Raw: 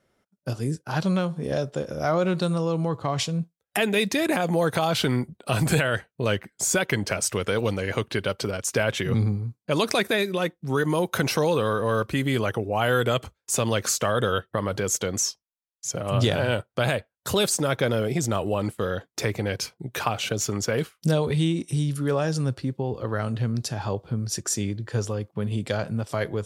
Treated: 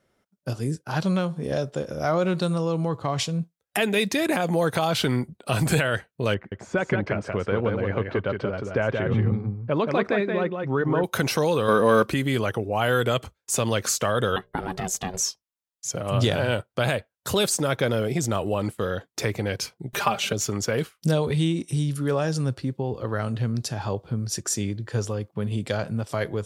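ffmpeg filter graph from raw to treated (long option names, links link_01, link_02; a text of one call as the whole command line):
ffmpeg -i in.wav -filter_complex "[0:a]asettb=1/sr,asplit=3[link_01][link_02][link_03];[link_01]atrim=end=6.344[link_04];[link_02]atrim=start=6.34:end=11.04,asetpts=PTS-STARTPTS,afade=type=in:duration=0.004:curve=qsin,afade=type=out:start_time=4.696:duration=0.004:curve=qsin,lowpass=1700,aecho=1:1:177:0.596,atrim=end_sample=207270[link_05];[link_03]atrim=start=11.036[link_06];[link_04][link_05]acrossfade=duration=0.004:curve1=hsin:curve2=qsin[link_07];[link_07][link_06]acrossfade=duration=0.004:curve1=qsin:curve2=hsin,asettb=1/sr,asplit=3[link_08][link_09][link_10];[link_08]atrim=end=11.684[link_11];[link_09]atrim=start=11.68:end=12.14,asetpts=PTS-STARTPTS,afade=type=in:duration=0.004:curve=qsin,afade=type=out:start_time=0.456:duration=0.004:curve=qsin,lowshelf=frequency=150:width_type=q:width=1.5:gain=-7,acontrast=54[link_12];[link_10]atrim=start=12.136[link_13];[link_11][link_12]acrossfade=duration=0.004:curve1=hsin:curve2=qsin[link_14];[link_14][link_13]acrossfade=duration=0.004:curve1=qsin:curve2=hsin,asettb=1/sr,asplit=3[link_15][link_16][link_17];[link_15]atrim=end=14.364[link_18];[link_16]atrim=start=14.36:end=15.21,asetpts=PTS-STARTPTS,afade=type=in:duration=0.004:curve=qsin,afade=type=out:start_time=0.846:duration=0.004:curve=qsin,equalizer=frequency=220:width_type=o:width=0.34:gain=-6,bandreject=frequency=60:width_type=h:width=6,bandreject=frequency=120:width_type=h:width=6,bandreject=frequency=180:width_type=h:width=6,bandreject=frequency=240:width_type=h:width=6,bandreject=frequency=300:width_type=h:width=6,aeval=exprs='val(0)*sin(2*PI*280*n/s)':channel_layout=same[link_19];[link_17]atrim=start=15.206[link_20];[link_18][link_19]acrossfade=duration=0.004:curve1=hsin:curve2=qsin[link_21];[link_21][link_20]acrossfade=duration=0.004:curve1=qsin:curve2=hsin,asettb=1/sr,asplit=3[link_22][link_23][link_24];[link_22]atrim=end=19.934[link_25];[link_23]atrim=start=19.93:end=20.33,asetpts=PTS-STARTPTS,afade=type=in:duration=0.004:curve=qsin,afade=type=out:start_time=0.396:duration=0.004:curve=qsin,acompressor=mode=upward:threshold=-29dB:ratio=2.5:attack=3.2:release=140:knee=2.83:detection=peak,aecho=1:1:5:0.83,atrim=end_sample=17640[link_26];[link_24]atrim=start=20.326[link_27];[link_25][link_26]acrossfade=duration=0.004:curve1=hsin:curve2=qsin[link_28];[link_28][link_27]acrossfade=duration=0.004:curve1=qsin:curve2=hsin" out.wav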